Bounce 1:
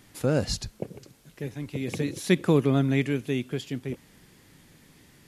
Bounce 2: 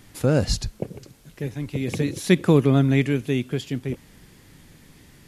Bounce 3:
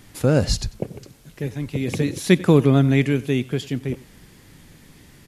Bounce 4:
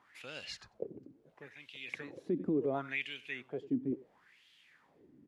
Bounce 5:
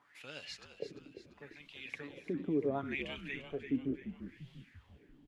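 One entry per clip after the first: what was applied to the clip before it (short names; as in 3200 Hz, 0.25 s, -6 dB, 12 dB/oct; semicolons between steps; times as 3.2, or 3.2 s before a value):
low shelf 83 Hz +9 dB; gain +3.5 dB
echo 94 ms -21 dB; gain +2 dB
wah 0.72 Hz 270–3200 Hz, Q 4.5; limiter -22.5 dBFS, peak gain reduction 10.5 dB; gain -1.5 dB
comb 7 ms, depth 38%; on a send: frequency-shifting echo 0.344 s, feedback 48%, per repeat -61 Hz, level -10.5 dB; on the sum: gain -2.5 dB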